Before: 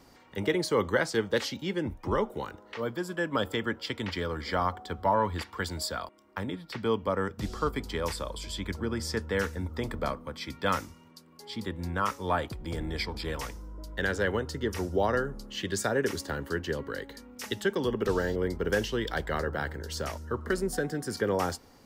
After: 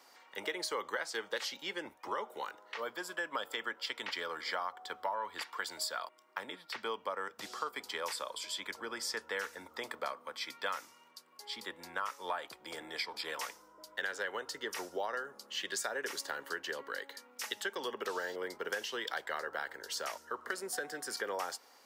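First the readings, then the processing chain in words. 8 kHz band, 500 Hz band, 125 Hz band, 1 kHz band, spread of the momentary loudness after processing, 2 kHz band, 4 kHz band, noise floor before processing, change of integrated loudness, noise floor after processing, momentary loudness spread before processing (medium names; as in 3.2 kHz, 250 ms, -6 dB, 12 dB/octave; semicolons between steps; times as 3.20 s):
-2.0 dB, -11.5 dB, -31.0 dB, -6.5 dB, 6 LU, -4.0 dB, -2.0 dB, -56 dBFS, -7.5 dB, -62 dBFS, 9 LU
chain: high-pass 710 Hz 12 dB/octave; compression, threshold -33 dBFS, peak gain reduction 10.5 dB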